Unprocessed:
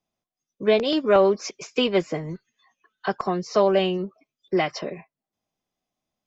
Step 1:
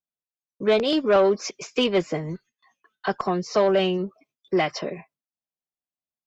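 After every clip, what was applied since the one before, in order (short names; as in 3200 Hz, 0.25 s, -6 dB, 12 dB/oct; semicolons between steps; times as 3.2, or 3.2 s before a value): added harmonics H 5 -22 dB, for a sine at -7 dBFS; gate with hold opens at -52 dBFS; gain -1.5 dB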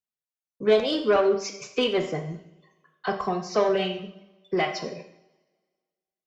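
reverb removal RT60 0.99 s; two-slope reverb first 0.65 s, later 1.7 s, from -22 dB, DRR 3 dB; gain -3 dB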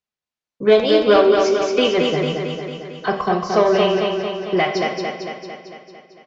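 LPF 5500 Hz 12 dB/oct; on a send: feedback echo 0.225 s, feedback 60%, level -4 dB; on the sum: gain +6.5 dB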